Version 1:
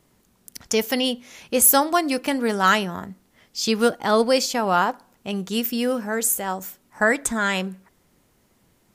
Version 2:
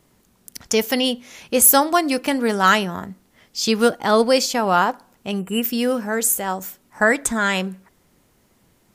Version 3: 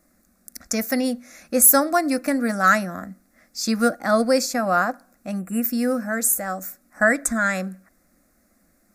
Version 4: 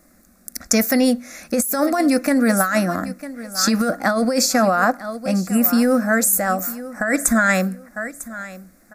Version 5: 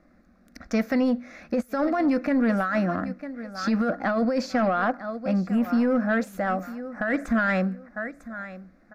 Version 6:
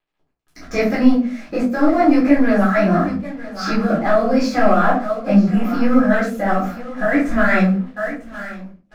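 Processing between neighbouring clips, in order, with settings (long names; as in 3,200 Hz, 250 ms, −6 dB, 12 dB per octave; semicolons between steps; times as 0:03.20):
gain on a spectral selection 0:05.39–0:05.62, 3,100–7,200 Hz −26 dB; level +2.5 dB
phaser with its sweep stopped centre 620 Hz, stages 8
repeating echo 950 ms, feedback 26%, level −18 dB; compressor whose output falls as the input rises −22 dBFS, ratio −1; level +5.5 dB
in parallel at −2.5 dB: brickwall limiter −10.5 dBFS, peak gain reduction 9 dB; on the sum: soft clipping −7 dBFS, distortion −19 dB; high-frequency loss of the air 280 metres; level −7.5 dB
dead-zone distortion −50.5 dBFS; rectangular room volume 190 cubic metres, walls furnished, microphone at 3.9 metres; micro pitch shift up and down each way 46 cents; level +4.5 dB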